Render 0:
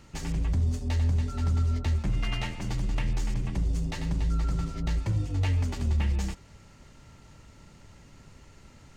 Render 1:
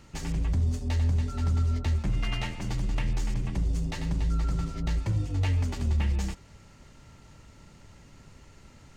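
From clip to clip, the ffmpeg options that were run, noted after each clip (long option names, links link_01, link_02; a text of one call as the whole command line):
ffmpeg -i in.wav -af anull out.wav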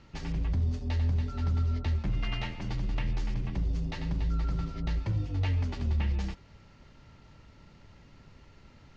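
ffmpeg -i in.wav -af "lowpass=frequency=5200:width=0.5412,lowpass=frequency=5200:width=1.3066,volume=-2.5dB" out.wav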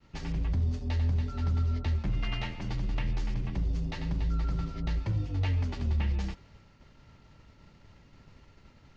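ffmpeg -i in.wav -af "agate=range=-33dB:threshold=-51dB:ratio=3:detection=peak" out.wav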